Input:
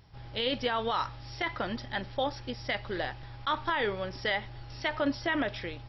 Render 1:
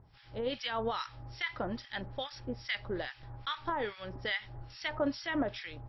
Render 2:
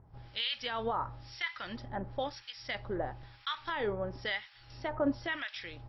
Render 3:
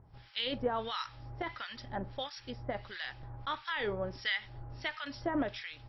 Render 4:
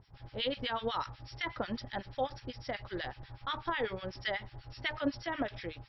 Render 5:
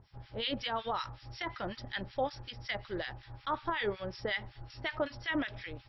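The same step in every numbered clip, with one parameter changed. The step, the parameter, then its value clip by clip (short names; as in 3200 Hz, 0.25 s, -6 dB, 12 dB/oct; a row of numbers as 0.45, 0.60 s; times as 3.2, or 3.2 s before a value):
harmonic tremolo, rate: 2.4, 1, 1.5, 8.1, 5.4 Hz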